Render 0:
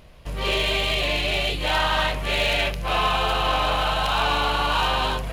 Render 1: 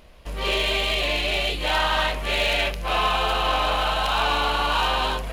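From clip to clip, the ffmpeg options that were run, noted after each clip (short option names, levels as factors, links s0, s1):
-af "equalizer=f=120:w=2:g=-12"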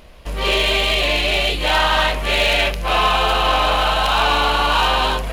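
-af "acontrast=52"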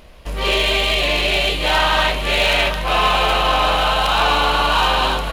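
-af "aecho=1:1:726:0.316"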